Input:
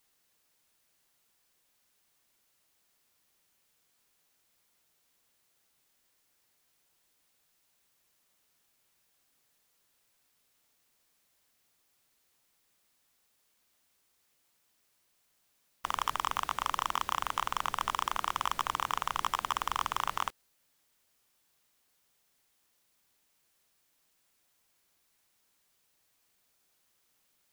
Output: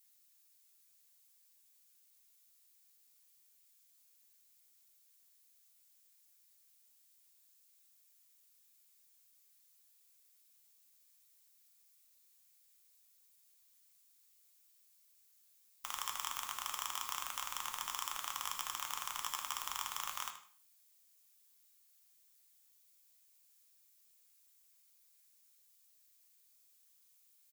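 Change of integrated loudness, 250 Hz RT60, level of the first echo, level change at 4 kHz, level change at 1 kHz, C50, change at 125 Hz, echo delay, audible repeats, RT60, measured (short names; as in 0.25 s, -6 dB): -6.5 dB, 0.55 s, -12.5 dB, -4.0 dB, -11.5 dB, 8.5 dB, under -15 dB, 78 ms, 1, 0.50 s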